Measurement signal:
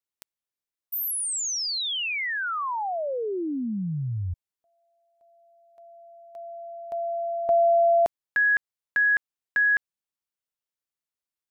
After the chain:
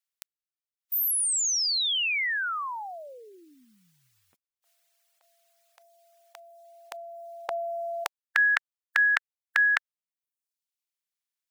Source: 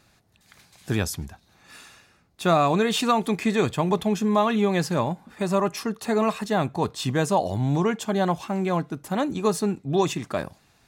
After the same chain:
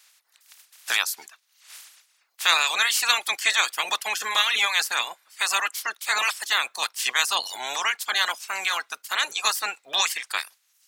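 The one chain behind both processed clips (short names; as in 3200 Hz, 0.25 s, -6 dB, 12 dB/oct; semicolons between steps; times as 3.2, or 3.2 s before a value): spectral limiter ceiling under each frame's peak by 24 dB; HPF 1400 Hz 12 dB/oct; reverb removal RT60 0.8 s; gain +4 dB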